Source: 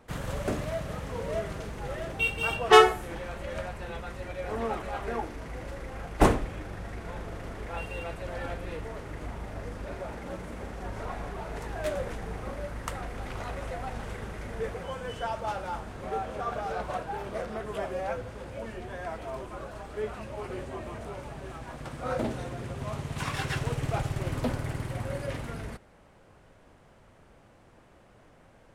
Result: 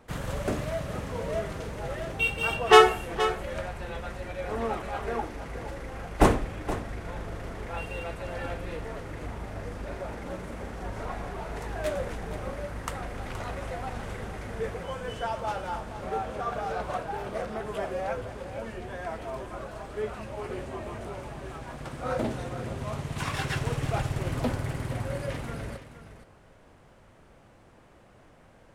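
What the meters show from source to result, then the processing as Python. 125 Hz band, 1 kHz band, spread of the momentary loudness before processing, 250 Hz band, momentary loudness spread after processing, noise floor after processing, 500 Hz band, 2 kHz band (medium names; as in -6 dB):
+1.0 dB, +1.5 dB, 10 LU, +1.0 dB, 10 LU, -56 dBFS, +1.5 dB, +1.5 dB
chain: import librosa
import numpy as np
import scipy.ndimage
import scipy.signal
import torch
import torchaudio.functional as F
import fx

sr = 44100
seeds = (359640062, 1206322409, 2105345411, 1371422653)

y = x + 10.0 ** (-12.0 / 20.0) * np.pad(x, (int(472 * sr / 1000.0), 0))[:len(x)]
y = F.gain(torch.from_numpy(y), 1.0).numpy()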